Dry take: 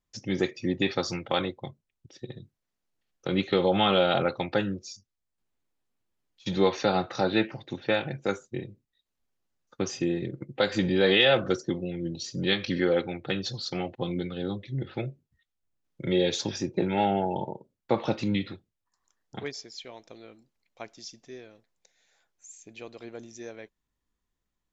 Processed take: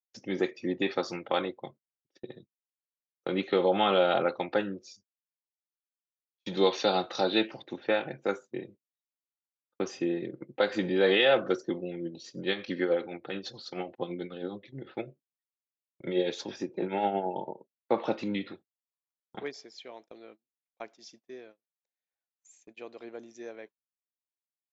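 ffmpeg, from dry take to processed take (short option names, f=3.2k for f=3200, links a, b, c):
-filter_complex "[0:a]asettb=1/sr,asplit=3[a][b][c];[a]atrim=end=6.574[d];[b]atrim=start=6.57:end=7.62,asetpts=PTS-STARTPTS,afade=t=in:d=0.004:c=qsin,afade=t=out:st=1.046:d=0.004:c=qsin,highshelf=f=2.6k:t=q:w=1.5:g=7.5[e];[c]atrim=start=7.616[f];[d][e]acrossfade=d=0.004:c1=hsin:c2=qsin[g];[g][f]acrossfade=d=0.004:c1=qsin:c2=hsin,asettb=1/sr,asplit=3[h][i][j];[h]atrim=end=12.064[k];[i]atrim=start=12.06:end=17.95,asetpts=PTS-STARTPTS,afade=t=in:d=0.004:c=qsin,afade=t=out:st=5.886:d=0.004:c=qsin,tremolo=f=9.2:d=0.51[l];[j]atrim=start=17.946[m];[k][l]acrossfade=d=0.004:c1=hsin:c2=qsin[n];[n][m]acrossfade=d=0.004:c1=qsin:c2=hsin,highpass=270,agate=range=-27dB:threshold=-50dB:ratio=16:detection=peak,lowpass=f=2.2k:p=1"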